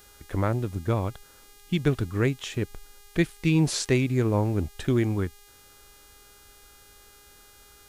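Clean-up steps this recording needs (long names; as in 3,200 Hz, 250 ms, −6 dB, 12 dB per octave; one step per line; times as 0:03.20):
hum removal 408.4 Hz, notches 38
downward expander −46 dBFS, range −21 dB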